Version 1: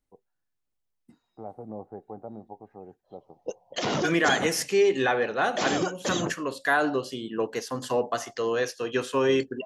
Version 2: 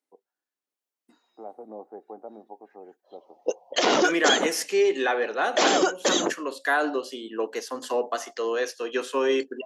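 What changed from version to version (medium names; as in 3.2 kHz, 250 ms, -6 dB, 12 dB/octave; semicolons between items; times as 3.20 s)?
background +7.5 dB; master: add high-pass 270 Hz 24 dB/octave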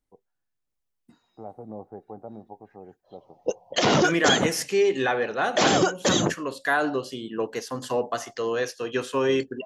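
master: remove high-pass 270 Hz 24 dB/octave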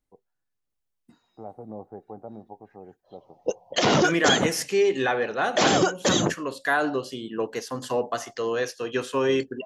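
no change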